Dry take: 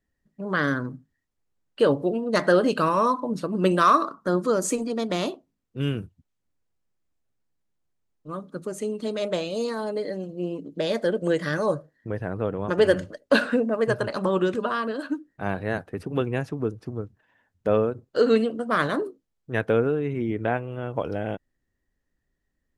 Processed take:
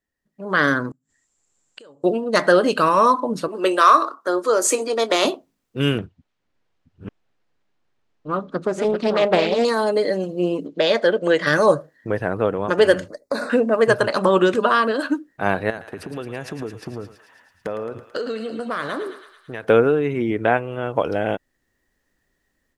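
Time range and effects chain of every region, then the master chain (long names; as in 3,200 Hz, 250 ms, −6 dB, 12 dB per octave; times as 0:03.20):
0:00.91–0:02.04: downward compressor 12 to 1, threshold −23 dBFS + low-pass with resonance 7,400 Hz, resonance Q 13 + gate with flip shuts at −33 dBFS, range −28 dB
0:03.48–0:05.25: high-pass filter 320 Hz 24 dB per octave + double-tracking delay 22 ms −13 dB
0:05.98–0:09.65: delay that plays each chunk backwards 555 ms, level −4.5 dB + low-pass filter 3,900 Hz + highs frequency-modulated by the lows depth 0.36 ms
0:10.67–0:11.47: low-pass filter 4,700 Hz + low-shelf EQ 330 Hz −8 dB
0:13.08–0:13.50: parametric band 1,600 Hz −10 dB 0.43 octaves + downward compressor, threshold −23 dBFS + Butterworth band-reject 3,000 Hz, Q 1.5
0:15.70–0:19.64: downward compressor 12 to 1, threshold −33 dBFS + feedback echo with a high-pass in the loop 110 ms, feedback 75%, high-pass 920 Hz, level −9 dB
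whole clip: low-shelf EQ 240 Hz −10.5 dB; automatic gain control gain up to 13.5 dB; level −1 dB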